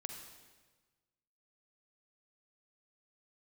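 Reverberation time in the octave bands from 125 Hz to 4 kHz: 1.6, 1.4, 1.4, 1.3, 1.2, 1.2 seconds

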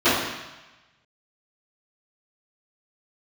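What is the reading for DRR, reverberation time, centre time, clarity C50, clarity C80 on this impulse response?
−19.5 dB, 1.1 s, 75 ms, 0.0 dB, 3.5 dB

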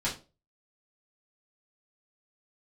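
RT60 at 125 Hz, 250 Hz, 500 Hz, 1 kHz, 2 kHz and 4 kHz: 0.40, 0.35, 0.35, 0.30, 0.25, 0.25 seconds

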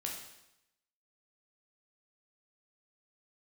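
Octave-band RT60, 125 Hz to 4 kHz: 0.90, 0.85, 0.85, 0.85, 0.85, 0.85 seconds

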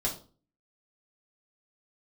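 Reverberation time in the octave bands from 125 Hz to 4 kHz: 0.55, 0.50, 0.40, 0.35, 0.25, 0.30 seconds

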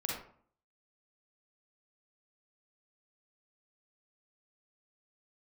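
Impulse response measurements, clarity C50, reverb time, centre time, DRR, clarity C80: 0.5 dB, 0.55 s, 49 ms, −3.0 dB, 6.0 dB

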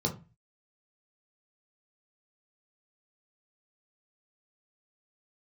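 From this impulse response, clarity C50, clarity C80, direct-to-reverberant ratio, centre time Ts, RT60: 13.0 dB, 19.5 dB, 0.0 dB, 14 ms, 0.30 s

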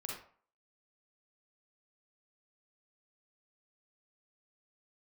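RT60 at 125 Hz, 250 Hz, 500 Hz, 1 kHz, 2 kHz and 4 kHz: 0.45, 0.45, 0.45, 0.50, 0.40, 0.30 seconds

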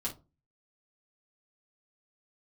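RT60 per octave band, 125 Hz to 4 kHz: 0.50, 0.40, 0.30, 0.25, 0.15, 0.15 seconds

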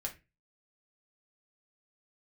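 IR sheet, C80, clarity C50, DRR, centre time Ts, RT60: 20.5 dB, 13.5 dB, 0.5 dB, 11 ms, 0.25 s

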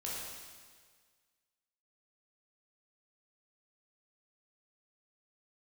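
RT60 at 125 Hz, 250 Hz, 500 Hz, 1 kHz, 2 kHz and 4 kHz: 1.7, 1.6, 1.7, 1.7, 1.6, 1.6 seconds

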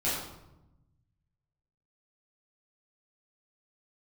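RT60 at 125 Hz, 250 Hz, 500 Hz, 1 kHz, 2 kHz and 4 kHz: 2.0, 1.4, 1.0, 0.90, 0.70, 0.60 seconds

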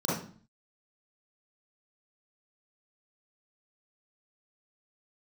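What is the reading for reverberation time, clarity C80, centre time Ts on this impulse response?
0.45 s, 7.0 dB, 56 ms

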